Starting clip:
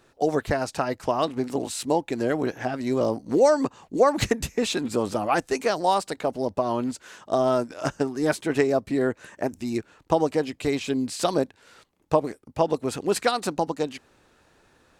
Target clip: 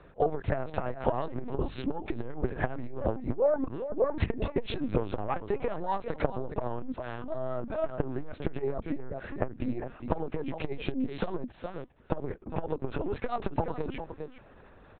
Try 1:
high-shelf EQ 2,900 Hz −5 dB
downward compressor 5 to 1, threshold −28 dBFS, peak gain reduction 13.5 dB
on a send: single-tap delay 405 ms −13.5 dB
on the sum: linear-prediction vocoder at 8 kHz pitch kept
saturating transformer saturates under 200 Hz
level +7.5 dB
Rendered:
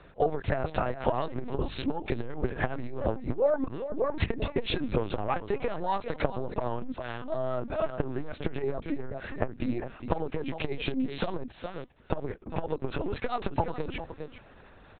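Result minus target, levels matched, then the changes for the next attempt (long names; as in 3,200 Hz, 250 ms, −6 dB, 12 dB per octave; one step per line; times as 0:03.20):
4,000 Hz band +6.0 dB
change: high-shelf EQ 2,900 Hz −17 dB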